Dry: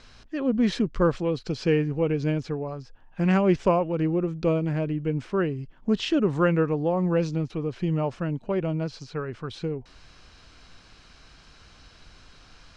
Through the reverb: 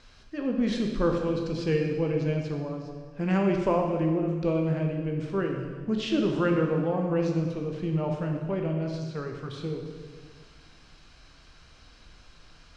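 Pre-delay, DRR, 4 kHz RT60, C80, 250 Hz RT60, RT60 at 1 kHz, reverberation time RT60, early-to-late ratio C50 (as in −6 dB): 12 ms, 1.5 dB, 1.5 s, 5.0 dB, 2.1 s, 1.6 s, 1.6 s, 3.5 dB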